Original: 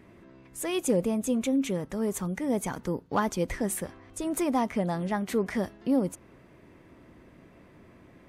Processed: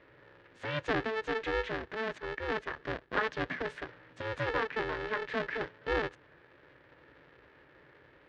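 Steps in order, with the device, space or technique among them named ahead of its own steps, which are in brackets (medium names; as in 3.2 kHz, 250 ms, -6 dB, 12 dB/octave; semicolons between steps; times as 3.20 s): ring modulator pedal into a guitar cabinet (polarity switched at an audio rate 220 Hz; cabinet simulation 76–3900 Hz, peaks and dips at 93 Hz -7 dB, 200 Hz -8 dB, 750 Hz -6 dB, 1.7 kHz +10 dB); 2.18–2.80 s: gate -33 dBFS, range -9 dB; trim -5 dB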